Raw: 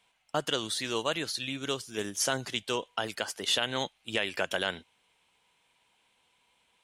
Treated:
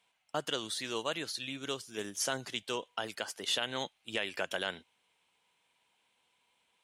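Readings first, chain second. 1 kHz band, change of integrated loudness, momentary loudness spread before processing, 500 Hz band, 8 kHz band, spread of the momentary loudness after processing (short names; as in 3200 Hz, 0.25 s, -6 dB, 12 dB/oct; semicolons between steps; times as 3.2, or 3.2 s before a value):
-4.5 dB, -4.5 dB, 6 LU, -4.5 dB, -4.5 dB, 6 LU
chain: HPF 120 Hz 6 dB/oct; gain -4.5 dB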